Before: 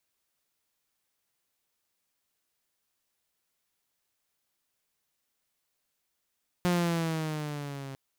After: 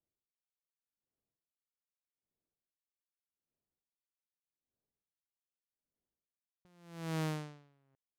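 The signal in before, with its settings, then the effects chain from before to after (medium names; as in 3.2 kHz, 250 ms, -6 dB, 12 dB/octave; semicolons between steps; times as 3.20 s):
gliding synth tone saw, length 1.30 s, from 179 Hz, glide -5 st, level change -15.5 dB, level -20.5 dB
level-controlled noise filter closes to 440 Hz, open at -30 dBFS; compression, threshold -31 dBFS; logarithmic tremolo 0.83 Hz, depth 35 dB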